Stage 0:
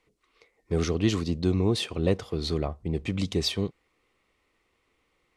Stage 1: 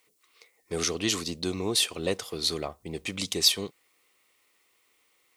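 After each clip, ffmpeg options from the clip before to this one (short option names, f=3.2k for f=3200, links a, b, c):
-af "aemphasis=mode=production:type=riaa"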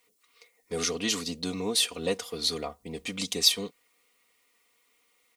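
-af "aecho=1:1:4.2:0.72,volume=-2.5dB"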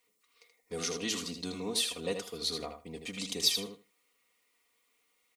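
-af "aecho=1:1:79|158|237:0.447|0.0715|0.0114,volume=-6dB"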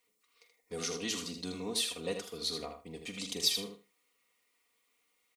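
-filter_complex "[0:a]asplit=2[a][b];[b]adelay=44,volume=-13dB[c];[a][c]amix=inputs=2:normalize=0,volume=-2dB"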